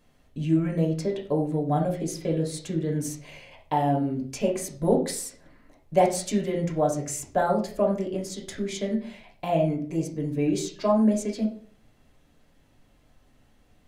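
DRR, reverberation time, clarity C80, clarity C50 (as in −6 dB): −1.5 dB, 0.45 s, 13.5 dB, 8.5 dB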